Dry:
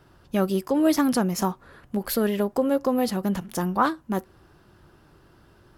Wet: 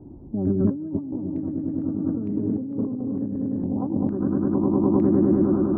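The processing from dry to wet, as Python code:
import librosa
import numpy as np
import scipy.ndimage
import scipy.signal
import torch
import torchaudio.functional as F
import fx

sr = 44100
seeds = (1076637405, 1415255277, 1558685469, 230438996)

p1 = fx.octave_divider(x, sr, octaves=1, level_db=-4.0)
p2 = fx.filter_sweep_lowpass(p1, sr, from_hz=280.0, to_hz=660.0, start_s=3.62, end_s=5.51, q=4.0)
p3 = p2 + fx.echo_swell(p2, sr, ms=102, loudest=5, wet_db=-9.0, dry=0)
p4 = fx.over_compress(p3, sr, threshold_db=-25.0, ratio=-1.0)
y = fx.filter_held_lowpass(p4, sr, hz=2.2, low_hz=850.0, high_hz=2400.0)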